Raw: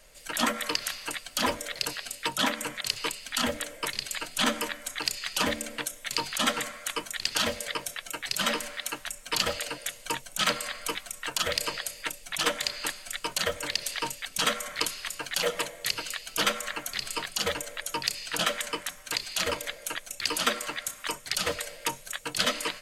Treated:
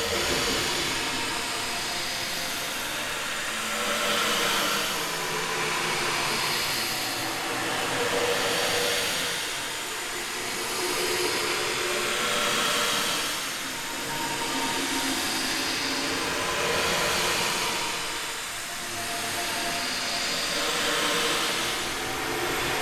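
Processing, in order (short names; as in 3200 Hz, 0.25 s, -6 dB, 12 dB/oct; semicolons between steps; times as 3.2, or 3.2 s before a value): whole clip reversed; in parallel at -11 dB: soft clip -21 dBFS, distortion -13 dB; on the sum: Paulstretch 4.2×, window 0.50 s, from 5.32; echoes that change speed 0.142 s, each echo -5 st, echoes 2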